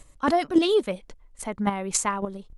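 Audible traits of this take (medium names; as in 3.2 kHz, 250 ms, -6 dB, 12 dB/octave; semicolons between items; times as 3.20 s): chopped level 3.6 Hz, depth 60%, duty 10%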